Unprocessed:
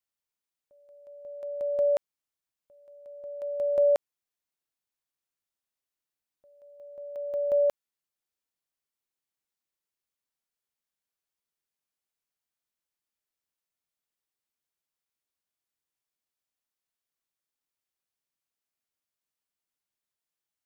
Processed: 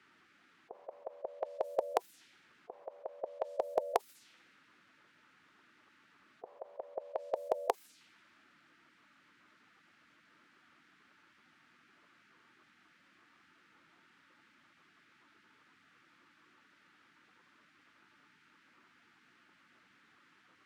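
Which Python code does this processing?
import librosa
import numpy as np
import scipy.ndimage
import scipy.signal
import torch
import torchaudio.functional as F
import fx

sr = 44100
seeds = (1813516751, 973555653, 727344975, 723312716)

y = scipy.signal.sosfilt(scipy.signal.bessel(2, 210.0, 'highpass', norm='mag', fs=sr, output='sos'), x)
y = fx.low_shelf(y, sr, hz=350.0, db=-10.0)
y = fx.env_lowpass(y, sr, base_hz=1100.0, full_db=-30.5)
y = fx.band_shelf(y, sr, hz=620.0, db=12.5, octaves=1.7)
y = fx.notch(y, sr, hz=890.0, q=15.0)
y = fx.spec_gate(y, sr, threshold_db=-15, keep='weak')
y = fx.env_flatten(y, sr, amount_pct=50)
y = y * 10.0 ** (4.0 / 20.0)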